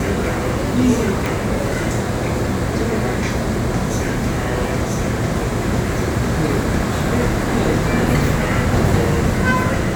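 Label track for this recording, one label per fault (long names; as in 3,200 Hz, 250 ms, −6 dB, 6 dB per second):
1.260000	1.260000	click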